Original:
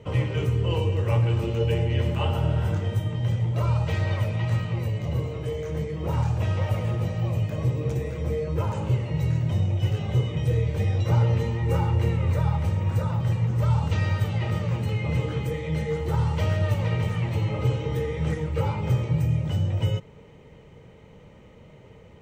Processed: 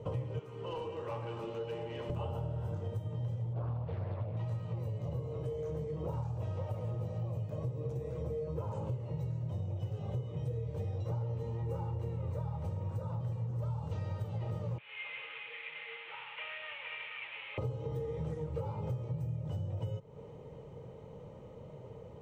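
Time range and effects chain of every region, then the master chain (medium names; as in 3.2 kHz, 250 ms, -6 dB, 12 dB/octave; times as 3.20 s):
0.39–2.10 s: high-pass 300 Hz + overdrive pedal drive 14 dB, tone 1 kHz, clips at -17.5 dBFS + peaking EQ 530 Hz -12.5 dB 1.8 oct
3.53–4.37 s: distance through air 290 m + loudspeaker Doppler distortion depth 0.53 ms
14.78–17.58 s: one-bit delta coder 16 kbps, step -32.5 dBFS + resonant high-pass 2.3 kHz, resonance Q 3.6
whole clip: graphic EQ 125/500/1000/2000 Hz +8/+9/+6/-7 dB; compression, threshold -28 dBFS; trim -7 dB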